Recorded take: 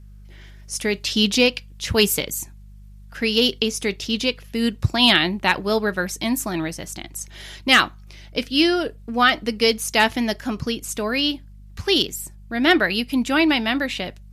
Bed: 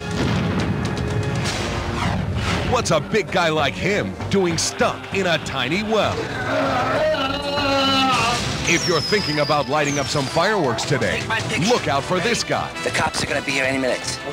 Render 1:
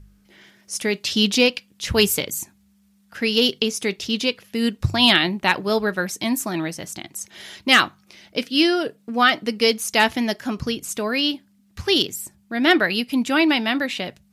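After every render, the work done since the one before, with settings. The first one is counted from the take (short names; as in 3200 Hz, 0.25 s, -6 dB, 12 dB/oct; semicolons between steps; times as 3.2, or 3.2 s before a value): de-hum 50 Hz, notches 3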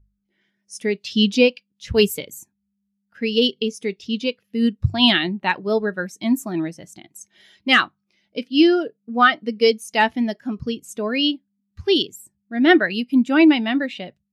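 AGC gain up to 3 dB; spectral expander 1.5:1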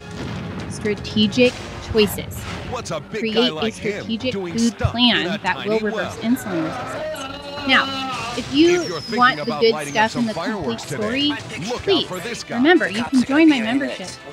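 add bed -8 dB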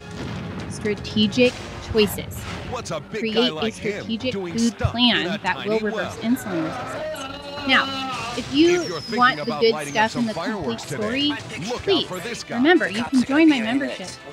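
gain -2 dB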